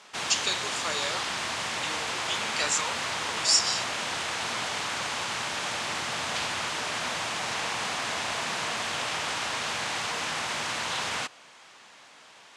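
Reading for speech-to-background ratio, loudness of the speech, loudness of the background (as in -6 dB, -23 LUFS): 1.0 dB, -28.5 LUFS, -29.5 LUFS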